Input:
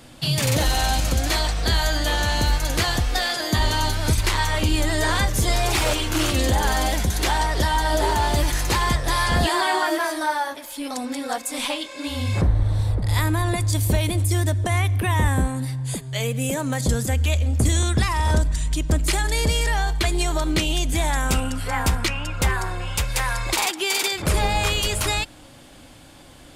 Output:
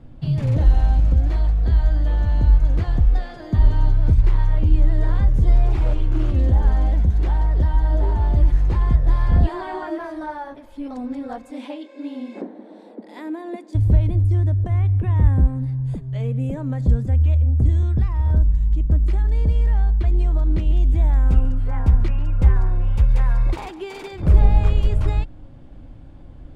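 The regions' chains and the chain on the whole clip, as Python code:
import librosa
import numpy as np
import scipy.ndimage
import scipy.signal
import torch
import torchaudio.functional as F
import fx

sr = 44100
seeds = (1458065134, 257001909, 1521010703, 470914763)

y = fx.chain(x, sr, fx.brickwall_highpass(low_hz=210.0),
    fx.peak_eq(hz=1200.0, db=-8.0, octaves=0.53), at=(11.5, 13.75))
y = fx.chain(y, sr, fx.high_shelf(hz=12000.0, db=5.0),
    fx.echo_single(ms=140, db=-17.5), at=(20.32, 24.89))
y = fx.tilt_eq(y, sr, slope=-4.5)
y = fx.rider(y, sr, range_db=4, speed_s=2.0)
y = fx.high_shelf(y, sr, hz=4700.0, db=-9.0)
y = F.gain(torch.from_numpy(y), -11.5).numpy()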